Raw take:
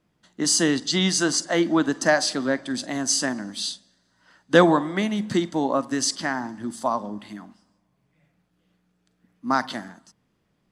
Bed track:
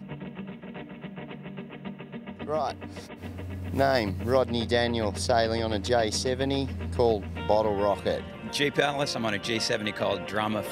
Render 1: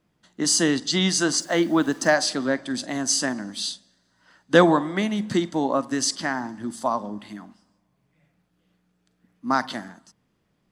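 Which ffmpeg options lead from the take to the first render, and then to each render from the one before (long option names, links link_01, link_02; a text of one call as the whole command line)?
ffmpeg -i in.wav -filter_complex "[0:a]asettb=1/sr,asplit=3[link_01][link_02][link_03];[link_01]atrim=end=1.384[link_04];[link_02]atrim=start=1.38:end=2.15,asetpts=PTS-STARTPTS,afade=type=in:duration=0.004:curve=qsin,afade=type=out:start_time=0.766:duration=0.004:curve=qsin,acrusher=bits=7:mix=0:aa=0.5[link_05];[link_03]atrim=start=2.146[link_06];[link_04][link_05]acrossfade=duration=0.004:curve1=hsin:curve2=qsin[link_07];[link_07][link_06]acrossfade=duration=0.004:curve1=qsin:curve2=hsin" out.wav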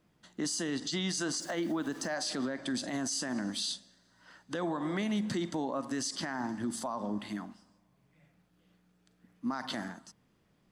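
ffmpeg -i in.wav -af "acompressor=threshold=-24dB:ratio=4,alimiter=level_in=1.5dB:limit=-24dB:level=0:latency=1:release=51,volume=-1.5dB" out.wav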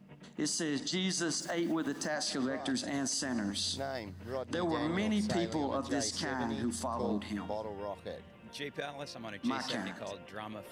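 ffmpeg -i in.wav -i bed.wav -filter_complex "[1:a]volume=-15dB[link_01];[0:a][link_01]amix=inputs=2:normalize=0" out.wav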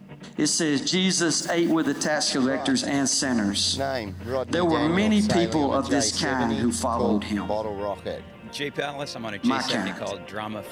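ffmpeg -i in.wav -af "volume=11dB" out.wav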